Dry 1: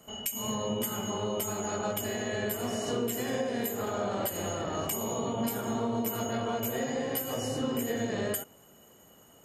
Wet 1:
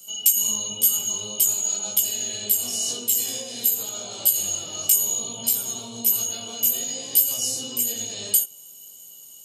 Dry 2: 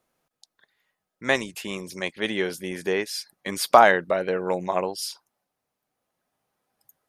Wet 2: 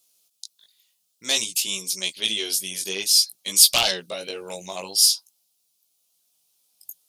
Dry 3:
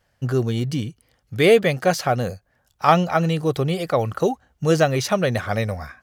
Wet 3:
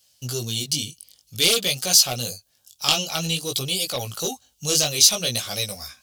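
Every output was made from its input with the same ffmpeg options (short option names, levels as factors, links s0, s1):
-af "highpass=52,flanger=delay=15.5:depth=5.3:speed=0.53,aeval=exprs='0.668*sin(PI/2*2.51*val(0)/0.668)':c=same,aexciter=amount=15.7:drive=4.8:freq=2800,volume=0.126"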